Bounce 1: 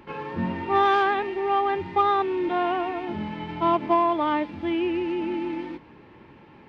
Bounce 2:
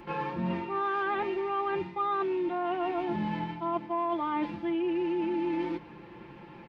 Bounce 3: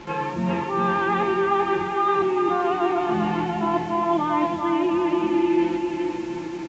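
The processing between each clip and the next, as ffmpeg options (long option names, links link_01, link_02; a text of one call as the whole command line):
ffmpeg -i in.wav -filter_complex "[0:a]acrossover=split=2600[link_01][link_02];[link_02]acompressor=threshold=-45dB:ratio=4:attack=1:release=60[link_03];[link_01][link_03]amix=inputs=2:normalize=0,aecho=1:1:5.8:0.62,areverse,acompressor=threshold=-27dB:ratio=12,areverse" out.wav
ffmpeg -i in.wav -af "aecho=1:1:400|700|925|1094|1220:0.631|0.398|0.251|0.158|0.1,acrusher=bits=7:mix=0:aa=0.5,aresample=16000,aresample=44100,volume=6.5dB" out.wav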